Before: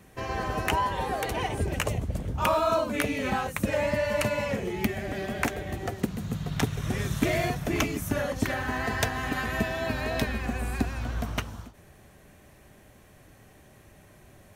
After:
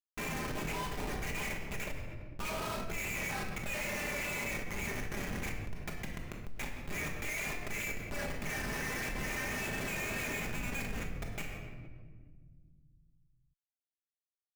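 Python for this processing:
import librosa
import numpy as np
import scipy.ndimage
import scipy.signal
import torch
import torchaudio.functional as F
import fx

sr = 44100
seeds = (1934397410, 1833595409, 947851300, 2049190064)

y = fx.dereverb_blind(x, sr, rt60_s=1.1)
y = fx.bandpass_q(y, sr, hz=2300.0, q=7.2)
y = fx.schmitt(y, sr, flips_db=-49.0)
y = fx.room_shoebox(y, sr, seeds[0], volume_m3=620.0, walls='mixed', distance_m=1.3)
y = fx.env_flatten(y, sr, amount_pct=50)
y = y * librosa.db_to_amplitude(4.0)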